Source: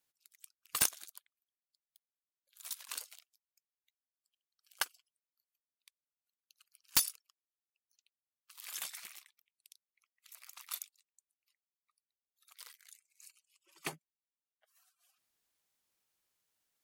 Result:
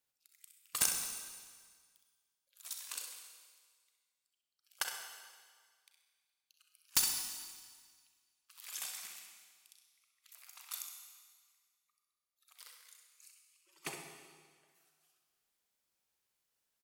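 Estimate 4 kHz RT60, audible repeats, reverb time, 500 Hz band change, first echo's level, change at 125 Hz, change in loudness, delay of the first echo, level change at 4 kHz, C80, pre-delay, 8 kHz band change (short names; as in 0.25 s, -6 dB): 1.7 s, 1, 1.7 s, -1.0 dB, -8.0 dB, -2.0 dB, -1.5 dB, 65 ms, 0.0 dB, 5.5 dB, 34 ms, +1.5 dB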